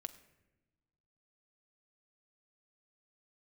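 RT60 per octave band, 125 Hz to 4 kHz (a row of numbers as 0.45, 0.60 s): 1.8, 1.6, 1.2, 0.90, 0.95, 0.65 s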